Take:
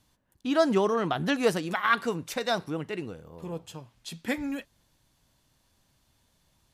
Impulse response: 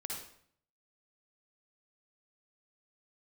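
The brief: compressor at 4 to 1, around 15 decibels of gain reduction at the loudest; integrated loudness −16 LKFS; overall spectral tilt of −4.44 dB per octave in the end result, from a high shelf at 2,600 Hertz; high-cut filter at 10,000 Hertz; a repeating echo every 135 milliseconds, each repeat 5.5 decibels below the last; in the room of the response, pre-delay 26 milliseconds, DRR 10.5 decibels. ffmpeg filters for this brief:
-filter_complex "[0:a]lowpass=10000,highshelf=frequency=2600:gain=-4,acompressor=threshold=-37dB:ratio=4,aecho=1:1:135|270|405|540|675|810|945:0.531|0.281|0.149|0.079|0.0419|0.0222|0.0118,asplit=2[link_01][link_02];[1:a]atrim=start_sample=2205,adelay=26[link_03];[link_02][link_03]afir=irnorm=-1:irlink=0,volume=-10.5dB[link_04];[link_01][link_04]amix=inputs=2:normalize=0,volume=22.5dB"

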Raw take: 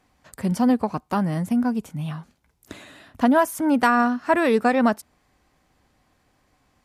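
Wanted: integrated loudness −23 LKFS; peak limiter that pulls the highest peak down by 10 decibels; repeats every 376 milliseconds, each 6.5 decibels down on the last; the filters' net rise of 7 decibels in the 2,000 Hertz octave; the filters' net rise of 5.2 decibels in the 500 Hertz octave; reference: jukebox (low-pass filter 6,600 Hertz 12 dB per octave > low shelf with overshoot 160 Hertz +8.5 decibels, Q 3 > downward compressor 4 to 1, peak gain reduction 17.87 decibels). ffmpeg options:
ffmpeg -i in.wav -af "equalizer=frequency=500:width_type=o:gain=7,equalizer=frequency=2000:width_type=o:gain=9,alimiter=limit=-10.5dB:level=0:latency=1,lowpass=6600,lowshelf=frequency=160:width_type=q:width=3:gain=8.5,aecho=1:1:376|752|1128|1504|1880|2256:0.473|0.222|0.105|0.0491|0.0231|0.0109,acompressor=threshold=-37dB:ratio=4,volume=15.5dB" out.wav

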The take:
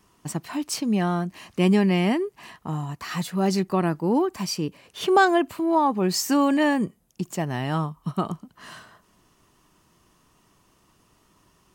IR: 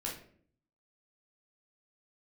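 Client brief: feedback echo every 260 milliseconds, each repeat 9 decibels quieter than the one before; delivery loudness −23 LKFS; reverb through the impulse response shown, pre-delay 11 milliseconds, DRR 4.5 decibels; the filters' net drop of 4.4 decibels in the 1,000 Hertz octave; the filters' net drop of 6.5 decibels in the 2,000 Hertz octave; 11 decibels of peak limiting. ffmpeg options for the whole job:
-filter_complex "[0:a]equalizer=frequency=1000:width_type=o:gain=-4.5,equalizer=frequency=2000:width_type=o:gain=-7,alimiter=limit=-20dB:level=0:latency=1,aecho=1:1:260|520|780|1040:0.355|0.124|0.0435|0.0152,asplit=2[link_01][link_02];[1:a]atrim=start_sample=2205,adelay=11[link_03];[link_02][link_03]afir=irnorm=-1:irlink=0,volume=-6dB[link_04];[link_01][link_04]amix=inputs=2:normalize=0,volume=3.5dB"

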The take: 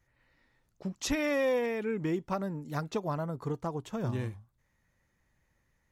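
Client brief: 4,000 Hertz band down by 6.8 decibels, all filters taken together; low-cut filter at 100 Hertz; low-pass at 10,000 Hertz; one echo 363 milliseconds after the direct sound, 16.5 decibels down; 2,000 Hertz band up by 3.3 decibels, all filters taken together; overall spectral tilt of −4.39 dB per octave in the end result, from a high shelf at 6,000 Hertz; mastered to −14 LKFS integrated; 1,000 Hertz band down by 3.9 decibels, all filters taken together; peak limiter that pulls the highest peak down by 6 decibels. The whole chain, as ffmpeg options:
ffmpeg -i in.wav -af "highpass=100,lowpass=10000,equalizer=frequency=1000:width_type=o:gain=-6.5,equalizer=frequency=2000:width_type=o:gain=8,equalizer=frequency=4000:width_type=o:gain=-9,highshelf=frequency=6000:gain=-5.5,alimiter=limit=-24dB:level=0:latency=1,aecho=1:1:363:0.15,volume=21dB" out.wav

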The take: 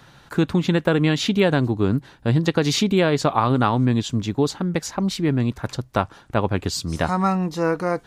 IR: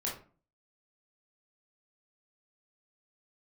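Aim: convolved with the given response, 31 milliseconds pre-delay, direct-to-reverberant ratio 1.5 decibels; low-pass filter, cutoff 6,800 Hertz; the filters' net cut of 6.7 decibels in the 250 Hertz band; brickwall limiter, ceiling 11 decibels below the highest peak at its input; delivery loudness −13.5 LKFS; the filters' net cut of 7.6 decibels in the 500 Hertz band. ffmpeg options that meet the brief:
-filter_complex "[0:a]lowpass=6800,equalizer=frequency=250:width_type=o:gain=-8,equalizer=frequency=500:width_type=o:gain=-7,alimiter=limit=-17.5dB:level=0:latency=1,asplit=2[link_01][link_02];[1:a]atrim=start_sample=2205,adelay=31[link_03];[link_02][link_03]afir=irnorm=-1:irlink=0,volume=-4.5dB[link_04];[link_01][link_04]amix=inputs=2:normalize=0,volume=12dB"

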